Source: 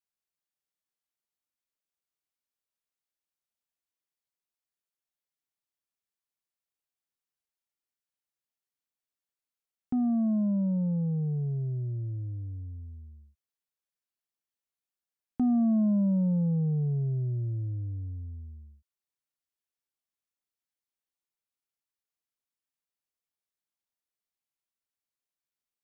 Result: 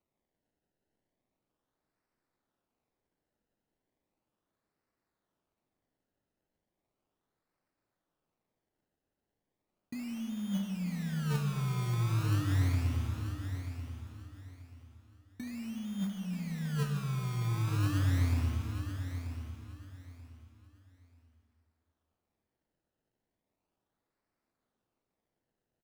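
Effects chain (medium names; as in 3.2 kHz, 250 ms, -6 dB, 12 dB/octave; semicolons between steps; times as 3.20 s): high-pass 98 Hz 12 dB/octave; hum notches 50/100/150/200 Hz; low-pass that closes with the level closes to 300 Hz, closed at -27 dBFS; resonant low shelf 440 Hz +9 dB, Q 1.5; in parallel at +0.5 dB: peak limiter -28 dBFS, peak gain reduction 18 dB; on the sum: compressor with a negative ratio -26 dBFS, ratio -1; modulation noise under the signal 21 dB; decimation with a swept rate 26×, swing 100% 0.36 Hz; on a send: feedback delay 934 ms, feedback 25%, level -9.5 dB; on the sum: algorithmic reverb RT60 2 s, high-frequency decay 0.85×, pre-delay 15 ms, DRR 5.5 dB; trim -8 dB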